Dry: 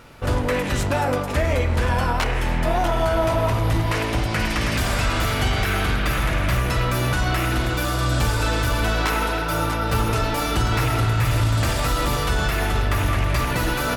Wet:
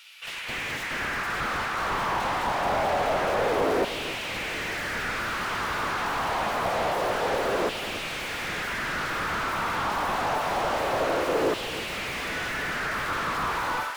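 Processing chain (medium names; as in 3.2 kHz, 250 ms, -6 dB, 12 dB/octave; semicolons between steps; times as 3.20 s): fade out at the end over 0.55 s; 12.10–12.72 s: high-pass 110 Hz -> 460 Hz 6 dB/octave; in parallel at +0.5 dB: peak limiter -20 dBFS, peak gain reduction 8.5 dB; on the sum: level rider gain up to 12.5 dB; 8.14–9.26 s: frequency shift -87 Hz; wavefolder -13 dBFS; LFO high-pass saw down 0.26 Hz 410–3000 Hz; on a send: echo whose repeats swap between lows and highs 301 ms, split 1.7 kHz, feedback 71%, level -13 dB; on the sum: slew-rate limiter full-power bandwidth 130 Hz; trim -6 dB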